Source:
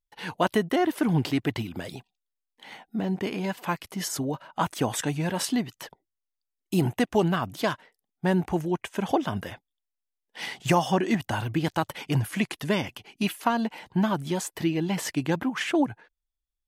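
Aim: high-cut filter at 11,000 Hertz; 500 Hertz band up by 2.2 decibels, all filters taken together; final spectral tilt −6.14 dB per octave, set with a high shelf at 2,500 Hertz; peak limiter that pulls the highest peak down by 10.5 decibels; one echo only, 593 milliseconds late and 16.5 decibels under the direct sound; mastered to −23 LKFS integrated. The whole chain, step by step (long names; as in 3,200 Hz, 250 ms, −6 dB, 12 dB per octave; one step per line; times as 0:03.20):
low-pass filter 11,000 Hz
parametric band 500 Hz +3.5 dB
high-shelf EQ 2,500 Hz −8.5 dB
brickwall limiter −19 dBFS
single-tap delay 593 ms −16.5 dB
level +7.5 dB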